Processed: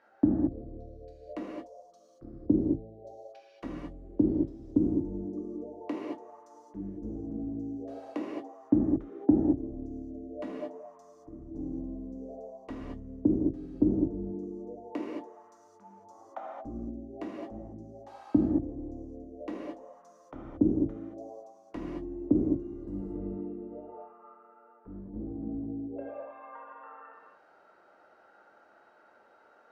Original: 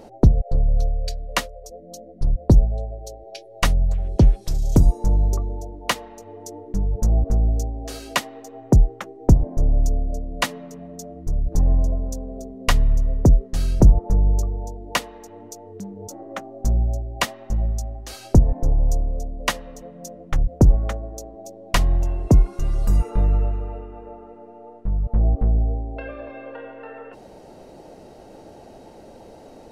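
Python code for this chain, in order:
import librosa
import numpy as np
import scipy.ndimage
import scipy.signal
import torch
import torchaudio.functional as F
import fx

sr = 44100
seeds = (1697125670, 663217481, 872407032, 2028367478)

y = fx.auto_wah(x, sr, base_hz=300.0, top_hz=1700.0, q=7.3, full_db=-21.5, direction='down')
y = fx.rev_gated(y, sr, seeds[0], gate_ms=250, shape='flat', drr_db=-4.0)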